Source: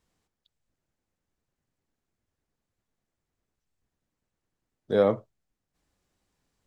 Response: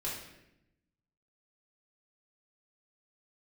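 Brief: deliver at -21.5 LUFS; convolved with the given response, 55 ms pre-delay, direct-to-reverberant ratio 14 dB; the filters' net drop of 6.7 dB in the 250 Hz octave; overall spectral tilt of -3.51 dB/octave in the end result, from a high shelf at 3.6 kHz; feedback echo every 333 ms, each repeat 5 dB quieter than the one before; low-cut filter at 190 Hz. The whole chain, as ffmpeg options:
-filter_complex "[0:a]highpass=190,equalizer=f=250:t=o:g=-7,highshelf=f=3600:g=7,aecho=1:1:333|666|999|1332|1665|1998|2331:0.562|0.315|0.176|0.0988|0.0553|0.031|0.0173,asplit=2[s0][s1];[1:a]atrim=start_sample=2205,adelay=55[s2];[s1][s2]afir=irnorm=-1:irlink=0,volume=0.141[s3];[s0][s3]amix=inputs=2:normalize=0,volume=2.51"

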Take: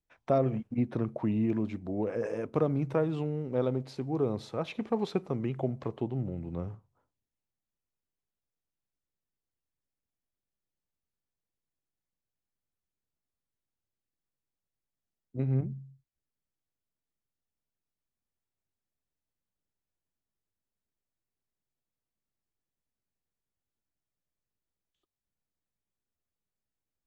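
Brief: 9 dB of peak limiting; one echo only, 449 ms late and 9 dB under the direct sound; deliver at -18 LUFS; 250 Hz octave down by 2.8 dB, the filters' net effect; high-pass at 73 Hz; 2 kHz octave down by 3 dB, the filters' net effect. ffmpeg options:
-af "highpass=73,equalizer=f=250:t=o:g=-3.5,equalizer=f=2000:t=o:g=-4,alimiter=level_in=1.12:limit=0.0631:level=0:latency=1,volume=0.891,aecho=1:1:449:0.355,volume=7.94"

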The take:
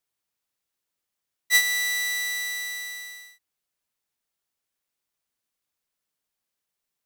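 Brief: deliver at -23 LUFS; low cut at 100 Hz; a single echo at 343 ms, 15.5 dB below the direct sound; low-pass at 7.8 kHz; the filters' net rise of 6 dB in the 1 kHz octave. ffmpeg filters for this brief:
-af "highpass=100,lowpass=7800,equalizer=f=1000:t=o:g=8.5,aecho=1:1:343:0.168,volume=1.06"

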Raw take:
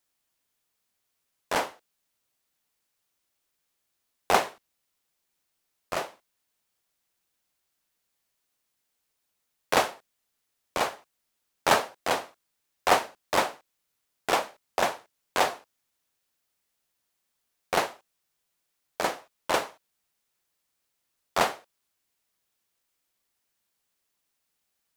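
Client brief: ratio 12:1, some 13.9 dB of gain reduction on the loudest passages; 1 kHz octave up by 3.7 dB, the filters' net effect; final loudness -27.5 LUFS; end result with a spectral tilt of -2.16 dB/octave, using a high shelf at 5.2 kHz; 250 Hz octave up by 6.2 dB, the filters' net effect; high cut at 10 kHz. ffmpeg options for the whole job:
-af "lowpass=10000,equalizer=f=250:t=o:g=8,equalizer=f=1000:t=o:g=4,highshelf=f=5200:g=7,acompressor=threshold=0.0501:ratio=12,volume=2.37"

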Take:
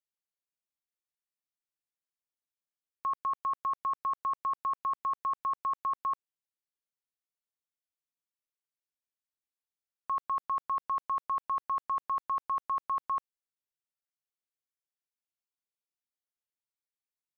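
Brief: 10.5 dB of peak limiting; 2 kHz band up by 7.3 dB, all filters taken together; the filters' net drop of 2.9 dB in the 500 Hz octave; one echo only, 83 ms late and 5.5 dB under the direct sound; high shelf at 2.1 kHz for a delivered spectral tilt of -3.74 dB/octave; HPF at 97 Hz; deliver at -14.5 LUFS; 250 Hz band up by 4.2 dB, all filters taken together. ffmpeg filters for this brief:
-af "highpass=97,equalizer=f=250:t=o:g=7.5,equalizer=f=500:t=o:g=-7,equalizer=f=2000:t=o:g=6,highshelf=f=2100:g=8,alimiter=level_in=2.99:limit=0.0631:level=0:latency=1,volume=0.335,aecho=1:1:83:0.531,volume=17.8"

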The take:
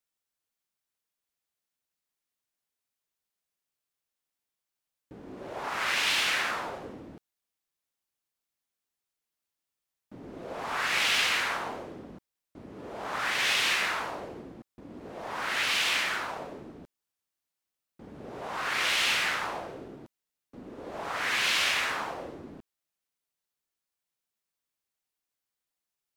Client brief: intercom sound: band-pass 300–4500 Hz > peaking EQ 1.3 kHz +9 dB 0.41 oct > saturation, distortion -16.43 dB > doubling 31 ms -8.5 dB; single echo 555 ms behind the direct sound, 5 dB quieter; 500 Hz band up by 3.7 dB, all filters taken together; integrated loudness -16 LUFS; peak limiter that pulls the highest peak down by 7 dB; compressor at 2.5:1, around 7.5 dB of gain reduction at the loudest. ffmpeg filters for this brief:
-filter_complex "[0:a]equalizer=f=500:t=o:g=5,acompressor=threshold=0.02:ratio=2.5,alimiter=level_in=1.58:limit=0.0631:level=0:latency=1,volume=0.631,highpass=300,lowpass=4500,equalizer=f=1300:t=o:w=0.41:g=9,aecho=1:1:555:0.562,asoftclip=threshold=0.0335,asplit=2[s0][s1];[s1]adelay=31,volume=0.376[s2];[s0][s2]amix=inputs=2:normalize=0,volume=10.6"

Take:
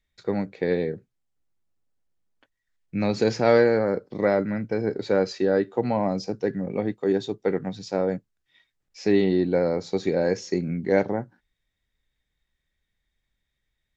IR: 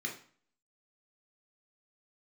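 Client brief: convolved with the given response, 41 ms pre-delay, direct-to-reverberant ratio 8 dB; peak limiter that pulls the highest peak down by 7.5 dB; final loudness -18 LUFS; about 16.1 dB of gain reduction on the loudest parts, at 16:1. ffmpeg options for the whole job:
-filter_complex "[0:a]acompressor=threshold=0.0355:ratio=16,alimiter=level_in=1.06:limit=0.0631:level=0:latency=1,volume=0.944,asplit=2[s0][s1];[1:a]atrim=start_sample=2205,adelay=41[s2];[s1][s2]afir=irnorm=-1:irlink=0,volume=0.316[s3];[s0][s3]amix=inputs=2:normalize=0,volume=7.94"

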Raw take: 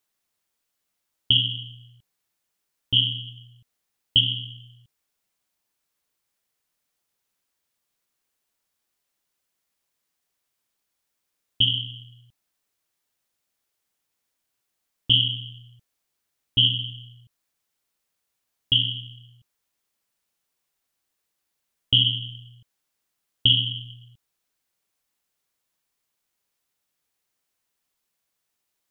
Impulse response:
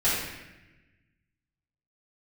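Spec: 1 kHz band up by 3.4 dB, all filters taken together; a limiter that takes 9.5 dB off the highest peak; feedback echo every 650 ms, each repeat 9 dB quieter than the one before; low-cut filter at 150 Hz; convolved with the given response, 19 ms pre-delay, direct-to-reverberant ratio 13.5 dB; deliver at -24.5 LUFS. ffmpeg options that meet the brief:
-filter_complex "[0:a]highpass=150,equalizer=f=1000:t=o:g=4.5,alimiter=limit=0.188:level=0:latency=1,aecho=1:1:650|1300|1950|2600:0.355|0.124|0.0435|0.0152,asplit=2[s0][s1];[1:a]atrim=start_sample=2205,adelay=19[s2];[s1][s2]afir=irnorm=-1:irlink=0,volume=0.0447[s3];[s0][s3]amix=inputs=2:normalize=0,volume=1.58"

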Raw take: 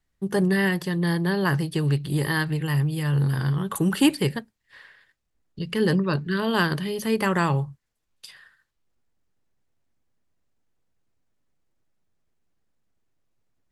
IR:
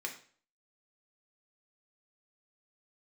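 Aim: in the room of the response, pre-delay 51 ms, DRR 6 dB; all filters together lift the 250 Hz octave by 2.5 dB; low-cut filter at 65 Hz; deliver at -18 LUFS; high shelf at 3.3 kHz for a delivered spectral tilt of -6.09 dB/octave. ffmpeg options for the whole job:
-filter_complex "[0:a]highpass=65,equalizer=f=250:t=o:g=4,highshelf=f=3300:g=-7.5,asplit=2[s0][s1];[1:a]atrim=start_sample=2205,adelay=51[s2];[s1][s2]afir=irnorm=-1:irlink=0,volume=0.422[s3];[s0][s3]amix=inputs=2:normalize=0,volume=1.58"

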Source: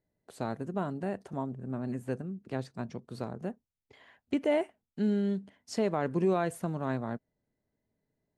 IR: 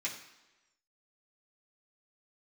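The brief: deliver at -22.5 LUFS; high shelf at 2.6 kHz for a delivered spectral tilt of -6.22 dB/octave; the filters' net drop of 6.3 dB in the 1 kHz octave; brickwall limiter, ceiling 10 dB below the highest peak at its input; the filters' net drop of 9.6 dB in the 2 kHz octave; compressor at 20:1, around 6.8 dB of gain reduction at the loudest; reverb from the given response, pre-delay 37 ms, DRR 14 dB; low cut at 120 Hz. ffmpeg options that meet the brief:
-filter_complex "[0:a]highpass=120,equalizer=f=1000:t=o:g=-7,equalizer=f=2000:t=o:g=-6,highshelf=f=2600:g=-9,acompressor=threshold=0.0282:ratio=20,alimiter=level_in=2.66:limit=0.0631:level=0:latency=1,volume=0.376,asplit=2[s0][s1];[1:a]atrim=start_sample=2205,adelay=37[s2];[s1][s2]afir=irnorm=-1:irlink=0,volume=0.141[s3];[s0][s3]amix=inputs=2:normalize=0,volume=10.6"

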